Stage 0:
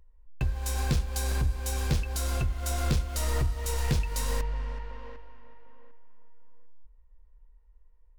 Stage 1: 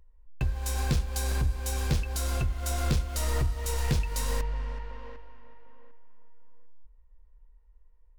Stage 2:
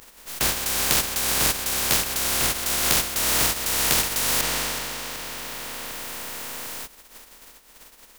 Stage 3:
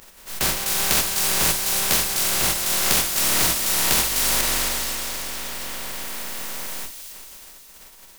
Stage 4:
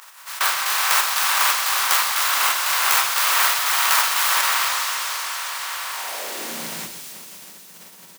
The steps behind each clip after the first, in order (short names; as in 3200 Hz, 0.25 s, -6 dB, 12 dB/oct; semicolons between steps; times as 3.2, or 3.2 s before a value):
nothing audible
spectral contrast lowered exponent 0.18; gain +4.5 dB
thin delay 0.271 s, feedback 56%, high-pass 3800 Hz, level -5 dB; reverb, pre-delay 5 ms, DRR 6 dB
tracing distortion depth 0.33 ms; high-pass sweep 1100 Hz -> 160 Hz, 5.93–6.69; echo 0.126 s -11 dB; gain +2.5 dB